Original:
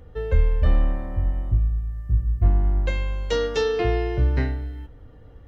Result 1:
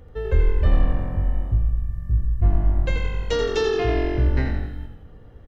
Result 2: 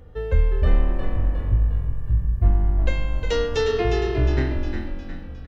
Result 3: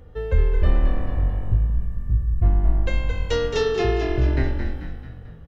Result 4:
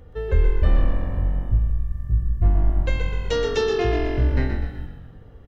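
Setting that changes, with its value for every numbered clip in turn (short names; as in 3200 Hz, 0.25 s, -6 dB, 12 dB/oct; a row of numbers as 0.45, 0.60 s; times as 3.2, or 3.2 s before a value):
frequency-shifting echo, time: 85, 358, 220, 125 ms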